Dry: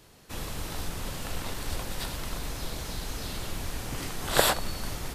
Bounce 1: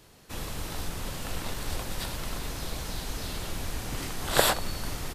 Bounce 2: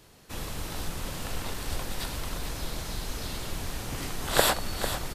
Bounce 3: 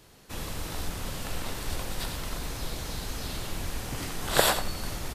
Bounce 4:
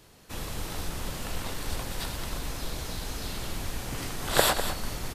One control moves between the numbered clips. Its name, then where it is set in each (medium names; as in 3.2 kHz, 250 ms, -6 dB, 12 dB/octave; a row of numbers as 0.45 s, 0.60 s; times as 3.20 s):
delay, time: 960 ms, 448 ms, 88 ms, 202 ms